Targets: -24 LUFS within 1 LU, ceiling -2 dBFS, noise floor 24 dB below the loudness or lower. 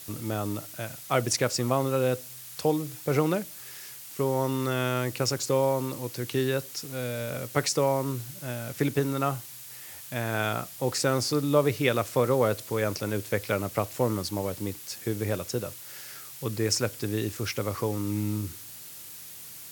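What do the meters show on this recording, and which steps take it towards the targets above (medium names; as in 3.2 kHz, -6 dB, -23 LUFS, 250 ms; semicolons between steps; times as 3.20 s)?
noise floor -44 dBFS; noise floor target -53 dBFS; loudness -28.5 LUFS; peak level -8.0 dBFS; loudness target -24.0 LUFS
-> noise print and reduce 9 dB; trim +4.5 dB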